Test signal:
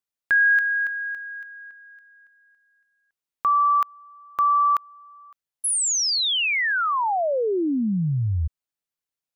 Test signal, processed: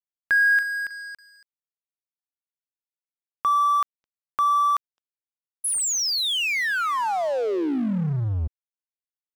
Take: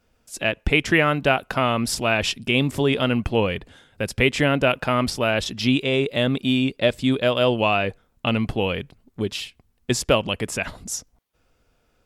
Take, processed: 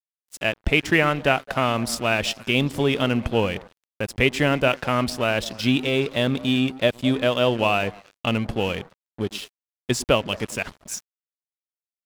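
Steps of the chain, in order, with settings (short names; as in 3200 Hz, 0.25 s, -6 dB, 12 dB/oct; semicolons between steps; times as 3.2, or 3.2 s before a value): delay with a stepping band-pass 0.106 s, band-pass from 240 Hz, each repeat 1.4 oct, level -11 dB; crossover distortion -36.5 dBFS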